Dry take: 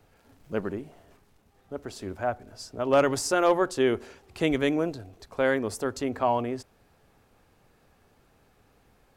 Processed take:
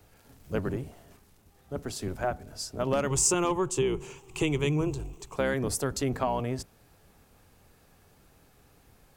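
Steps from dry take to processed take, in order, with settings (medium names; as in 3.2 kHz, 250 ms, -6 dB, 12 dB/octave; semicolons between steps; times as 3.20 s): octave divider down 1 oct, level +1 dB; 3.10–5.36 s: rippled EQ curve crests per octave 0.7, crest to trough 12 dB; compression 6:1, threshold -24 dBFS, peak gain reduction 10 dB; treble shelf 5.1 kHz +10 dB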